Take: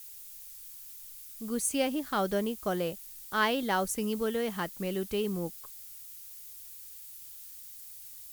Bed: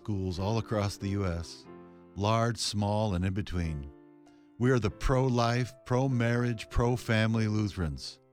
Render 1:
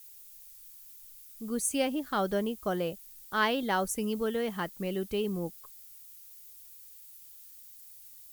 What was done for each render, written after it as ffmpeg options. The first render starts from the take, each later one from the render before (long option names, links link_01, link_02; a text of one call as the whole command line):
ffmpeg -i in.wav -af "afftdn=noise_reduction=6:noise_floor=-48" out.wav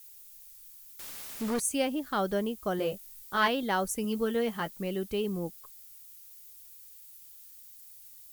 ffmpeg -i in.wav -filter_complex "[0:a]asettb=1/sr,asplit=3[link_01][link_02][link_03];[link_01]atrim=end=0.994[link_04];[link_02]atrim=start=0.99:end=1.6,asetpts=PTS-STARTPTS,afade=type=in:duration=0.004:curve=qsin,afade=type=out:start_time=0.606:duration=0.004:curve=qsin,asplit=2[link_05][link_06];[link_06]highpass=frequency=720:poles=1,volume=30dB,asoftclip=type=tanh:threshold=-22.5dB[link_07];[link_05][link_07]amix=inputs=2:normalize=0,lowpass=frequency=3200:poles=1,volume=-6dB[link_08];[link_03]atrim=start=1.596[link_09];[link_04][link_08]acrossfade=duration=0.004:curve1=hsin:curve2=qsin[link_10];[link_10][link_09]acrossfade=duration=0.004:curve1=qsin:curve2=hsin,asettb=1/sr,asplit=3[link_11][link_12][link_13];[link_11]atrim=end=2.774[link_14];[link_12]atrim=start=2.77:end=3.48,asetpts=PTS-STARTPTS,afade=type=in:duration=0.004:curve=qsin,afade=type=out:start_time=0.706:duration=0.004:curve=qsin,asplit=2[link_15][link_16];[link_16]adelay=20,volume=-3.5dB[link_17];[link_15][link_17]amix=inputs=2:normalize=0,atrim=end_sample=31311[link_18];[link_13]atrim=start=3.476[link_19];[link_14][link_18]acrossfade=duration=0.004:curve1=hsin:curve2=qsin[link_20];[link_20][link_19]acrossfade=duration=0.004:curve1=qsin:curve2=hsin,asettb=1/sr,asplit=3[link_21][link_22][link_23];[link_21]atrim=end=4.034[link_24];[link_22]atrim=start=4.03:end=4.8,asetpts=PTS-STARTPTS,afade=type=in:duration=0.004:curve=qsin,afade=type=out:start_time=0.766:duration=0.004:curve=qsin,asplit=2[link_25][link_26];[link_26]adelay=13,volume=-7.5dB[link_27];[link_25][link_27]amix=inputs=2:normalize=0,atrim=end_sample=33957[link_28];[link_23]atrim=start=4.796[link_29];[link_24][link_28]acrossfade=duration=0.004:curve1=hsin:curve2=qsin[link_30];[link_30][link_29]acrossfade=duration=0.004:curve1=qsin:curve2=hsin" out.wav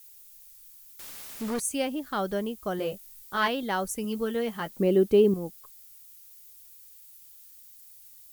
ffmpeg -i in.wav -filter_complex "[0:a]asettb=1/sr,asplit=3[link_01][link_02][link_03];[link_01]atrim=end=4.704[link_04];[link_02]atrim=start=4.7:end=5.34,asetpts=PTS-STARTPTS,afade=type=in:duration=0.004:curve=qsin,afade=type=out:start_time=0.636:duration=0.004:curve=qsin,equalizer=frequency=350:width_type=o:width=2.3:gain=13.5[link_05];[link_03]atrim=start=5.336[link_06];[link_04][link_05]acrossfade=duration=0.004:curve1=hsin:curve2=qsin[link_07];[link_07][link_06]acrossfade=duration=0.004:curve1=qsin:curve2=hsin" out.wav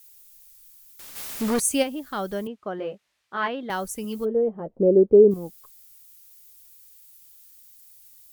ffmpeg -i in.wav -filter_complex "[0:a]asplit=3[link_01][link_02][link_03];[link_01]afade=type=out:start_time=1.15:duration=0.02[link_04];[link_02]acontrast=87,afade=type=in:start_time=1.15:duration=0.02,afade=type=out:start_time=1.82:duration=0.02[link_05];[link_03]afade=type=in:start_time=1.82:duration=0.02[link_06];[link_04][link_05][link_06]amix=inputs=3:normalize=0,asettb=1/sr,asplit=3[link_07][link_08][link_09];[link_07]atrim=end=2.474[link_10];[link_08]atrim=start=2.47:end=3.7,asetpts=PTS-STARTPTS,afade=type=in:duration=0.004:curve=qsin,afade=type=out:start_time=1.226:duration=0.004:curve=qsin,highpass=200,lowpass=2400[link_11];[link_09]atrim=start=3.696[link_12];[link_10][link_11]acrossfade=duration=0.004:curve1=hsin:curve2=qsin[link_13];[link_13][link_12]acrossfade=duration=0.004:curve1=qsin:curve2=hsin,asplit=3[link_14][link_15][link_16];[link_14]afade=type=out:start_time=4.24:duration=0.02[link_17];[link_15]lowpass=frequency=520:width_type=q:width=2.7,afade=type=in:start_time=4.24:duration=0.02,afade=type=out:start_time=5.3:duration=0.02[link_18];[link_16]afade=type=in:start_time=5.3:duration=0.02[link_19];[link_17][link_18][link_19]amix=inputs=3:normalize=0" out.wav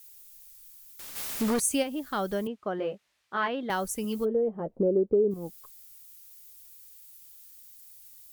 ffmpeg -i in.wav -af "acompressor=threshold=-24dB:ratio=3" out.wav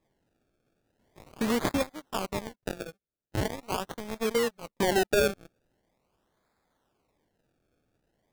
ffmpeg -i in.wav -af "acrusher=samples=30:mix=1:aa=0.000001:lfo=1:lforange=30:lforate=0.42,aeval=exprs='0.188*(cos(1*acos(clip(val(0)/0.188,-1,1)))-cos(1*PI/2))+0.0531*(cos(3*acos(clip(val(0)/0.188,-1,1)))-cos(3*PI/2))+0.075*(cos(5*acos(clip(val(0)/0.188,-1,1)))-cos(5*PI/2))+0.0596*(cos(7*acos(clip(val(0)/0.188,-1,1)))-cos(7*PI/2))':channel_layout=same" out.wav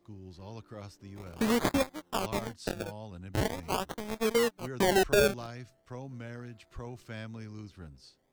ffmpeg -i in.wav -i bed.wav -filter_complex "[1:a]volume=-15dB[link_01];[0:a][link_01]amix=inputs=2:normalize=0" out.wav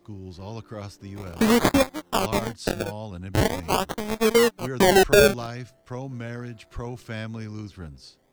ffmpeg -i in.wav -af "volume=8.5dB" out.wav